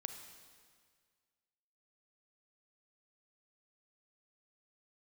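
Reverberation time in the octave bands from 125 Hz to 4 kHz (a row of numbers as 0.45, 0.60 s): 1.9, 1.8, 1.8, 1.8, 1.8, 1.7 s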